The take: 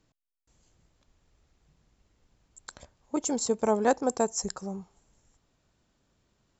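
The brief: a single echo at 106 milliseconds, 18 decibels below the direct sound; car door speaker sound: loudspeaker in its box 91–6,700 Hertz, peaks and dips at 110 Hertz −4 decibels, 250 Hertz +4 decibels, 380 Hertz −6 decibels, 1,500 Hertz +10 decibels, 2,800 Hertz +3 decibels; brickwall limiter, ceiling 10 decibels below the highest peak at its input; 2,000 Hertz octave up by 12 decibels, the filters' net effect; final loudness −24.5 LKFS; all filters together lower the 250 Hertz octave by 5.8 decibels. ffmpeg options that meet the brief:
ffmpeg -i in.wav -af "equalizer=frequency=250:width_type=o:gain=-8.5,equalizer=frequency=2000:width_type=o:gain=7,alimiter=limit=-19.5dB:level=0:latency=1,highpass=91,equalizer=frequency=110:width_type=q:width=4:gain=-4,equalizer=frequency=250:width_type=q:width=4:gain=4,equalizer=frequency=380:width_type=q:width=4:gain=-6,equalizer=frequency=1500:width_type=q:width=4:gain=10,equalizer=frequency=2800:width_type=q:width=4:gain=3,lowpass=frequency=6700:width=0.5412,lowpass=frequency=6700:width=1.3066,aecho=1:1:106:0.126,volume=9.5dB" out.wav

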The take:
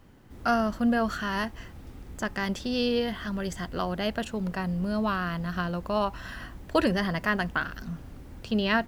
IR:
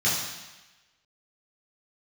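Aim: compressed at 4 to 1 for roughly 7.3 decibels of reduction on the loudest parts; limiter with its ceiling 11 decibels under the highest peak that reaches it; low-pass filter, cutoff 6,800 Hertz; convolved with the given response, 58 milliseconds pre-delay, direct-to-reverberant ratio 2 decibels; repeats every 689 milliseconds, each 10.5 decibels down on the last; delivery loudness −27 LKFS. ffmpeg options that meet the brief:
-filter_complex "[0:a]lowpass=6800,acompressor=threshold=-28dB:ratio=4,alimiter=level_in=3.5dB:limit=-24dB:level=0:latency=1,volume=-3.5dB,aecho=1:1:689|1378|2067:0.299|0.0896|0.0269,asplit=2[link_01][link_02];[1:a]atrim=start_sample=2205,adelay=58[link_03];[link_02][link_03]afir=irnorm=-1:irlink=0,volume=-15dB[link_04];[link_01][link_04]amix=inputs=2:normalize=0,volume=6.5dB"

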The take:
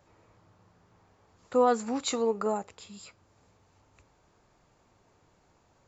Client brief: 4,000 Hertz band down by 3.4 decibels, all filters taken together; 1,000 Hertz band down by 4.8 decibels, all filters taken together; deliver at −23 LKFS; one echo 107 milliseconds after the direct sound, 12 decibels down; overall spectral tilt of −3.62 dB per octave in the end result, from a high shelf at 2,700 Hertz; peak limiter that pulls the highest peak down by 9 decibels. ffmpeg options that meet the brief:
ffmpeg -i in.wav -af "equalizer=frequency=1000:width_type=o:gain=-7.5,highshelf=frequency=2700:gain=6.5,equalizer=frequency=4000:width_type=o:gain=-8.5,alimiter=limit=-23.5dB:level=0:latency=1,aecho=1:1:107:0.251,volume=11.5dB" out.wav

